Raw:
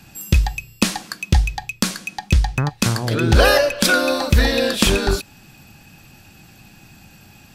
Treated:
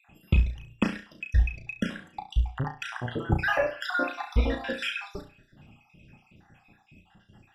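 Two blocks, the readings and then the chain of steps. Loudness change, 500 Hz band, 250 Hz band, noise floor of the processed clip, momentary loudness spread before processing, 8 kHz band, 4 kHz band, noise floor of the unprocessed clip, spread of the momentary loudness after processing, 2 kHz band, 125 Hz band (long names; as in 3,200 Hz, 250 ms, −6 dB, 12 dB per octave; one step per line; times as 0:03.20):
−11.0 dB, −13.5 dB, −11.0 dB, −64 dBFS, 9 LU, −27.5 dB, −17.0 dB, −47 dBFS, 9 LU, −9.5 dB, −9.5 dB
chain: time-frequency cells dropped at random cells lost 59%
Savitzky-Golay smoothing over 25 samples
flutter between parallel walls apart 5.8 metres, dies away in 0.32 s
level −7 dB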